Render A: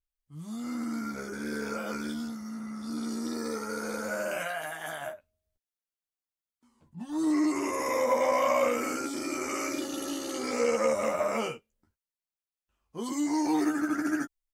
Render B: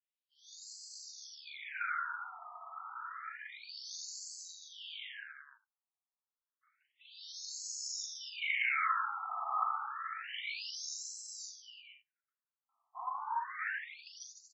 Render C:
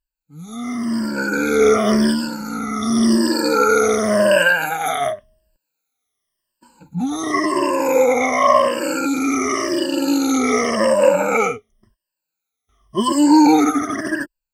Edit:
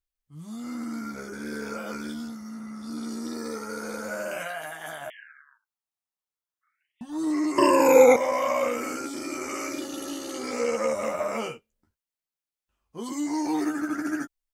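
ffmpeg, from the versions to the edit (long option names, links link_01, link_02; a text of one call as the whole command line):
ffmpeg -i take0.wav -i take1.wav -i take2.wav -filter_complex "[0:a]asplit=3[link_01][link_02][link_03];[link_01]atrim=end=5.102[link_04];[1:a]atrim=start=5.098:end=7.012[link_05];[link_02]atrim=start=7.008:end=7.582[link_06];[2:a]atrim=start=7.578:end=8.162[link_07];[link_03]atrim=start=8.158[link_08];[link_04][link_05]acrossfade=duration=0.004:curve1=hsin:curve2=hsin[link_09];[link_09][link_06]acrossfade=duration=0.004:curve1=hsin:curve2=hsin[link_10];[link_10][link_07]acrossfade=duration=0.004:curve1=hsin:curve2=hsin[link_11];[link_11][link_08]acrossfade=duration=0.004:curve1=hsin:curve2=hsin" out.wav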